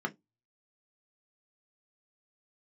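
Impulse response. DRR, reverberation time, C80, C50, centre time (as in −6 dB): 2.5 dB, 0.15 s, 35.5 dB, 25.0 dB, 6 ms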